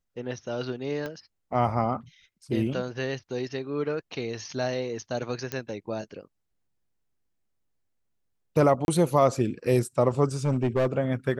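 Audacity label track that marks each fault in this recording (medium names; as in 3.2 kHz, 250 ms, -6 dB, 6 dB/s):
1.060000	1.060000	pop -21 dBFS
5.520000	5.520000	pop -15 dBFS
8.850000	8.880000	dropout 31 ms
10.450000	10.870000	clipped -19.5 dBFS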